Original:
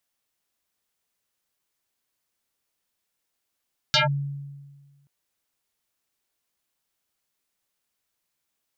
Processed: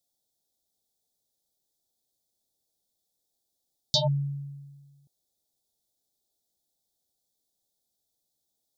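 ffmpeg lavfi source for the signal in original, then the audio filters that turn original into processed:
-f lavfi -i "aevalsrc='0.178*pow(10,-3*t/1.51)*sin(2*PI*141*t+7.2*clip(1-t/0.14,0,1)*sin(2*PI*5.32*141*t))':d=1.13:s=44100"
-af "asuperstop=centerf=1700:order=20:qfactor=0.68"

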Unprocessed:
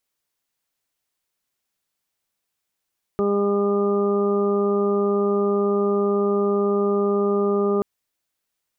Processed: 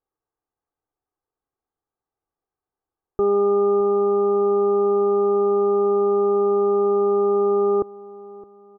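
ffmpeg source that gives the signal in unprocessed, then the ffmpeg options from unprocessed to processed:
-f lavfi -i "aevalsrc='0.0668*sin(2*PI*202*t)+0.112*sin(2*PI*404*t)+0.0282*sin(2*PI*606*t)+0.0168*sin(2*PI*808*t)+0.0075*sin(2*PI*1010*t)+0.0335*sin(2*PI*1212*t)':d=4.63:s=44100"
-af "lowpass=f=1200:w=0.5412,lowpass=f=1200:w=1.3066,aecho=1:1:2.5:0.56,aecho=1:1:615|1230|1845:0.112|0.046|0.0189"

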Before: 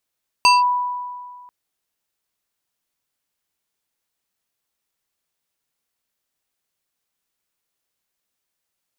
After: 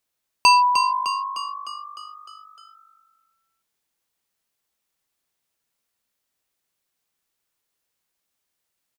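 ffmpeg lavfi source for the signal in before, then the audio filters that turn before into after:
-f lavfi -i "aevalsrc='0.398*pow(10,-3*t/1.86)*sin(2*PI*986*t+1.1*clip(1-t/0.18,0,1)*sin(2*PI*3.72*986*t))':d=1.04:s=44100"
-filter_complex "[0:a]asplit=8[s0][s1][s2][s3][s4][s5][s6][s7];[s1]adelay=304,afreqshift=50,volume=0.398[s8];[s2]adelay=608,afreqshift=100,volume=0.232[s9];[s3]adelay=912,afreqshift=150,volume=0.133[s10];[s4]adelay=1216,afreqshift=200,volume=0.0776[s11];[s5]adelay=1520,afreqshift=250,volume=0.0452[s12];[s6]adelay=1824,afreqshift=300,volume=0.026[s13];[s7]adelay=2128,afreqshift=350,volume=0.0151[s14];[s0][s8][s9][s10][s11][s12][s13][s14]amix=inputs=8:normalize=0"

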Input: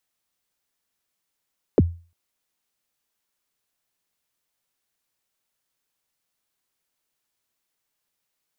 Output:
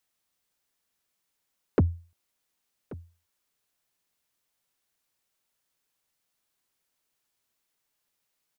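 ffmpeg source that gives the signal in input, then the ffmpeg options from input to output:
-f lavfi -i "aevalsrc='0.376*pow(10,-3*t/0.35)*sin(2*PI*(550*0.031/log(85/550)*(exp(log(85/550)*min(t,0.031)/0.031)-1)+85*max(t-0.031,0)))':d=0.35:s=44100"
-af "asoftclip=type=tanh:threshold=0.168,aecho=1:1:1133:0.112"

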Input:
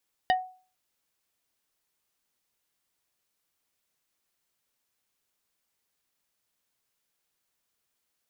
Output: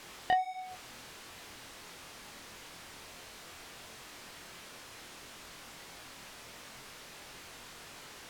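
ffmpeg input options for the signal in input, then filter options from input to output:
-f lavfi -i "aevalsrc='0.133*pow(10,-3*t/0.4)*sin(2*PI*742*t)+0.0794*pow(10,-3*t/0.133)*sin(2*PI*1855*t)+0.0473*pow(10,-3*t/0.076)*sin(2*PI*2968*t)+0.0282*pow(10,-3*t/0.058)*sin(2*PI*3710*t)+0.0168*pow(10,-3*t/0.042)*sin(2*PI*4823*t)':d=0.45:s=44100"
-af "aeval=exprs='val(0)+0.5*0.02*sgn(val(0))':c=same,flanger=delay=22.5:depth=3.4:speed=1.5,aemphasis=mode=reproduction:type=50fm"

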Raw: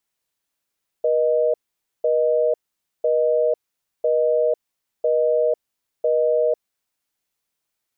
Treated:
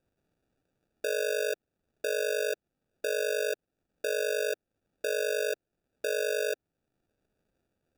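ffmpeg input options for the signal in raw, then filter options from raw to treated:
-f lavfi -i "aevalsrc='0.119*(sin(2*PI*480*t)+sin(2*PI*620*t))*clip(min(mod(t,1),0.5-mod(t,1))/0.005,0,1)':d=5.73:s=44100"
-af "equalizer=f=370:t=o:w=0.52:g=-9.5,alimiter=limit=0.0668:level=0:latency=1:release=464,acrusher=samples=42:mix=1:aa=0.000001"

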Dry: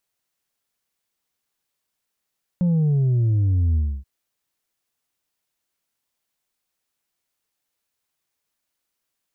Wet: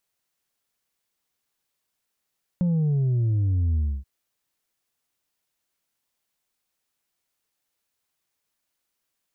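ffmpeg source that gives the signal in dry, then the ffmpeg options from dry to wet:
-f lavfi -i "aevalsrc='0.15*clip((1.43-t)/0.28,0,1)*tanh(1.41*sin(2*PI*180*1.43/log(65/180)*(exp(log(65/180)*t/1.43)-1)))/tanh(1.41)':d=1.43:s=44100"
-af "acompressor=threshold=0.0891:ratio=6"

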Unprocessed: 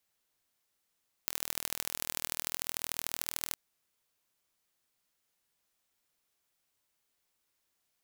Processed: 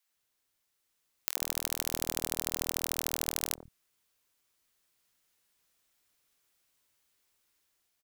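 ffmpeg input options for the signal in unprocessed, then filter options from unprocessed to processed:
-f lavfi -i "aevalsrc='0.596*eq(mod(n,1094),0)*(0.5+0.5*eq(mod(n,3282),0))':d=2.28:s=44100"
-filter_complex "[0:a]acrossover=split=190|710[s0][s1][s2];[s1]adelay=90[s3];[s0]adelay=140[s4];[s4][s3][s2]amix=inputs=3:normalize=0,dynaudnorm=f=630:g=3:m=1.78"

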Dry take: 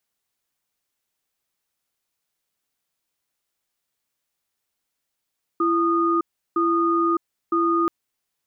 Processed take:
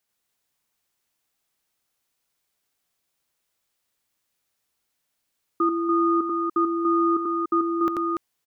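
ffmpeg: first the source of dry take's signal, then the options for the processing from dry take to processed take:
-f lavfi -i "aevalsrc='0.1*(sin(2*PI*336*t)+sin(2*PI*1230*t))*clip(min(mod(t,0.96),0.61-mod(t,0.96))/0.005,0,1)':d=2.28:s=44100"
-af "aecho=1:1:87.46|288.6:0.794|0.562"

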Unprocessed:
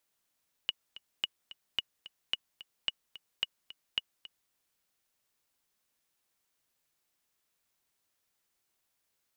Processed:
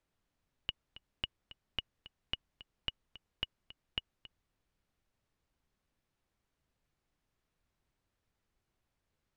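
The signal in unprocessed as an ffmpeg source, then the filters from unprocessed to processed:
-f lavfi -i "aevalsrc='pow(10,(-16-17*gte(mod(t,2*60/219),60/219))/20)*sin(2*PI*2910*mod(t,60/219))*exp(-6.91*mod(t,60/219)/0.03)':d=3.83:s=44100"
-af "aemphasis=mode=reproduction:type=riaa"

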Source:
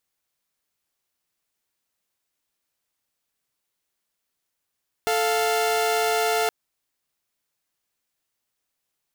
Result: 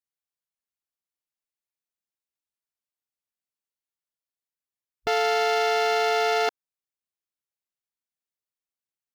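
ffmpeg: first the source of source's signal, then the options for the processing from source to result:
-f lavfi -i "aevalsrc='0.0944*((2*mod(440*t,1)-1)+(2*mod(698.46*t,1)-1))':d=1.42:s=44100"
-af "afwtdn=0.02"

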